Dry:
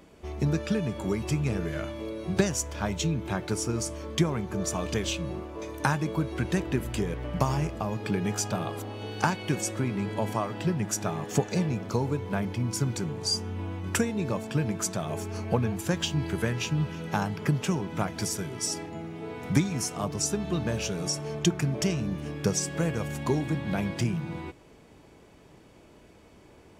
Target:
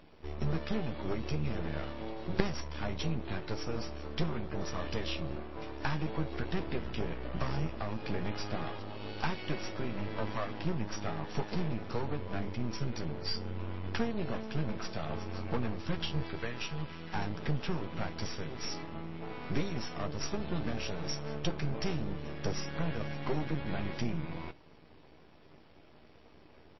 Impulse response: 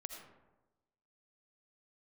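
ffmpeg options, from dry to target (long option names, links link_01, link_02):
-filter_complex "[0:a]asplit=3[link_01][link_02][link_03];[link_01]afade=type=out:start_time=16.22:duration=0.02[link_04];[link_02]lowshelf=frequency=320:gain=-8,afade=type=in:start_time=16.22:duration=0.02,afade=type=out:start_time=17.14:duration=0.02[link_05];[link_03]afade=type=in:start_time=17.14:duration=0.02[link_06];[link_04][link_05][link_06]amix=inputs=3:normalize=0,aeval=exprs='max(val(0),0)':channel_layout=same,asplit=2[link_07][link_08];[link_08]adelay=13,volume=-10dB[link_09];[link_07][link_09]amix=inputs=2:normalize=0,aeval=exprs='0.355*(cos(1*acos(clip(val(0)/0.355,-1,1)))-cos(1*PI/2))+0.1*(cos(3*acos(clip(val(0)/0.355,-1,1)))-cos(3*PI/2))+0.0562*(cos(5*acos(clip(val(0)/0.355,-1,1)))-cos(5*PI/2))+0.00316*(cos(6*acos(clip(val(0)/0.355,-1,1)))-cos(6*PI/2))+0.00562*(cos(8*acos(clip(val(0)/0.355,-1,1)))-cos(8*PI/2))':channel_layout=same" -ar 16000 -c:a libmp3lame -b:a 24k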